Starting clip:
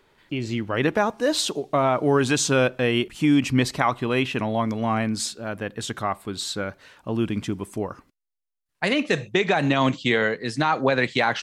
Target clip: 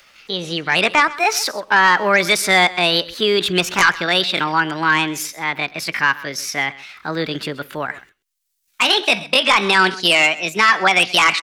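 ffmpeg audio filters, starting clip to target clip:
-filter_complex "[0:a]acrossover=split=380|820|2800[s0][s1][s2][s3];[s2]aeval=exprs='0.398*sin(PI/2*3.55*val(0)/0.398)':c=same[s4];[s3]acompressor=mode=upward:threshold=0.00398:ratio=2.5[s5];[s0][s1][s4][s5]amix=inputs=4:normalize=0,asetrate=62367,aresample=44100,atempo=0.707107,aecho=1:1:130:0.112"

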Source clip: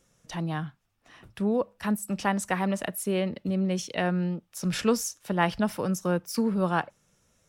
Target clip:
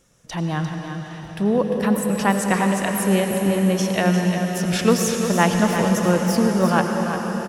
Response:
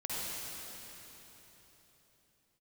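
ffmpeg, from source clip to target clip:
-filter_complex "[0:a]aecho=1:1:349:0.376,asplit=2[s0][s1];[1:a]atrim=start_sample=2205,asetrate=26019,aresample=44100[s2];[s1][s2]afir=irnorm=-1:irlink=0,volume=0.355[s3];[s0][s3]amix=inputs=2:normalize=0,volume=1.58"

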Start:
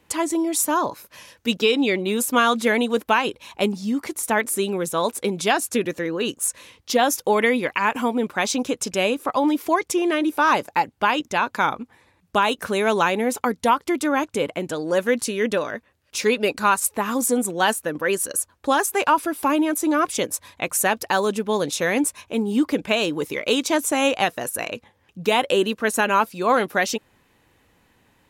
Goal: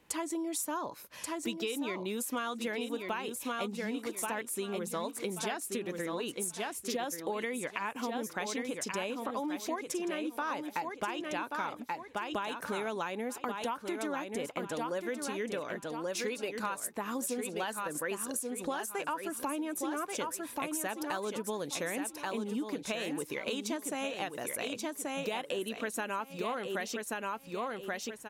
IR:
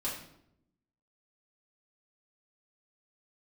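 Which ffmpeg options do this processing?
-af "equalizer=f=88:w=4.4:g=-12.5,aecho=1:1:1132|2264|3396:0.473|0.104|0.0229,acompressor=threshold=0.0398:ratio=6,volume=0.562"

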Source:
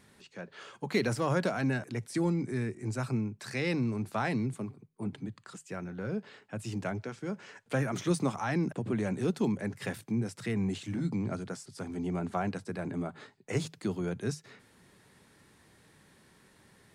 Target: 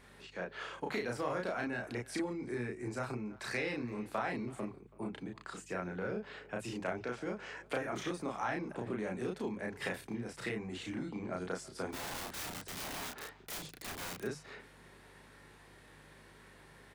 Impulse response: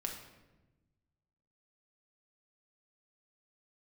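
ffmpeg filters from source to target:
-filter_complex "[0:a]acompressor=threshold=0.0178:ratio=12,bass=f=250:g=-11,treble=f=4000:g=-10,asplit=3[s0][s1][s2];[s0]afade=t=out:st=11.92:d=0.02[s3];[s1]aeval=exprs='(mod(141*val(0)+1,2)-1)/141':c=same,afade=t=in:st=11.92:d=0.02,afade=t=out:st=14.22:d=0.02[s4];[s2]afade=t=in:st=14.22:d=0.02[s5];[s3][s4][s5]amix=inputs=3:normalize=0,asplit=2[s6][s7];[s7]adelay=330,highpass=300,lowpass=3400,asoftclip=type=hard:threshold=0.02,volume=0.1[s8];[s6][s8]amix=inputs=2:normalize=0,aeval=exprs='val(0)+0.000501*(sin(2*PI*50*n/s)+sin(2*PI*2*50*n/s)/2+sin(2*PI*3*50*n/s)/3+sin(2*PI*4*50*n/s)/4+sin(2*PI*5*50*n/s)/5)':c=same,highshelf=f=6700:g=4.5,asplit=2[s9][s10];[s10]adelay=33,volume=0.794[s11];[s9][s11]amix=inputs=2:normalize=0,volume=1.41"

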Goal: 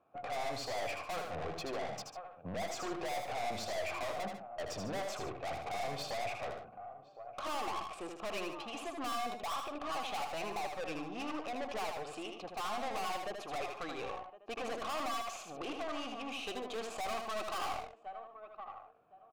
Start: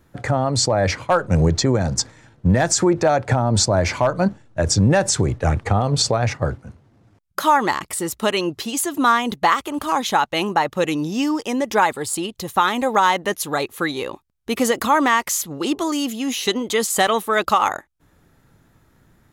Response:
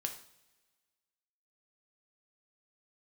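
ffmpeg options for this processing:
-filter_complex "[0:a]adynamicsmooth=sensitivity=5.5:basefreq=2700,asplit=3[s0][s1][s2];[s0]bandpass=f=730:t=q:w=8,volume=1[s3];[s1]bandpass=f=1090:t=q:w=8,volume=0.501[s4];[s2]bandpass=f=2440:t=q:w=8,volume=0.355[s5];[s3][s4][s5]amix=inputs=3:normalize=0,asplit=2[s6][s7];[s7]adelay=1061,lowpass=f=1800:p=1,volume=0.0631,asplit=2[s8][s9];[s9]adelay=1061,lowpass=f=1800:p=1,volume=0.19[s10];[s8][s10]amix=inputs=2:normalize=0[s11];[s6][s11]amix=inputs=2:normalize=0,aeval=exprs='(tanh(112*val(0)+0.3)-tanh(0.3))/112':c=same,asplit=2[s12][s13];[s13]aecho=0:1:78.72|145.8:0.562|0.251[s14];[s12][s14]amix=inputs=2:normalize=0,volume=1.5"

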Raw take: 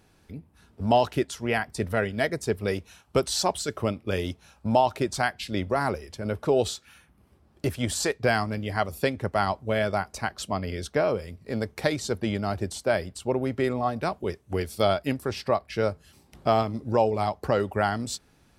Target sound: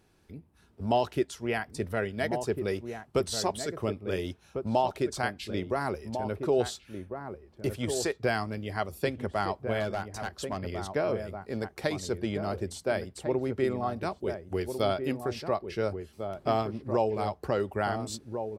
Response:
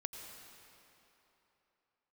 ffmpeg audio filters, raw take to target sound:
-filter_complex "[0:a]equalizer=f=370:w=4.2:g=5,asplit=2[s0][s1];[s1]adelay=1399,volume=0.447,highshelf=f=4000:g=-31.5[s2];[s0][s2]amix=inputs=2:normalize=0,asettb=1/sr,asplit=3[s3][s4][s5];[s3]atrim=end=9.804[s6];[s4]atrim=start=9.8:end=10.78,asetpts=PTS-STARTPTS,afade=t=in:d=0.004:c=qsin,afade=t=out:st=0.976:d=0.004:c=qsin,volume=10,asoftclip=hard,volume=0.1[s7];[s5]atrim=start=10.776[s8];[s6][s7]acrossfade=d=0.004:c1=hsin:c2=qsin[s9];[s9][s8]acrossfade=d=0.004:c1=qsin:c2=hsin,volume=0.531"

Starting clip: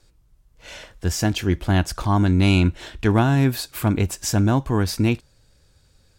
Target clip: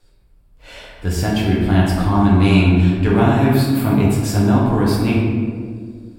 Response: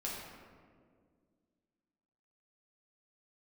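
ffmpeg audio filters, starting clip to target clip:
-filter_complex "[0:a]equalizer=f=6200:w=3:g=-9[s0];[1:a]atrim=start_sample=2205[s1];[s0][s1]afir=irnorm=-1:irlink=0,volume=1.33"

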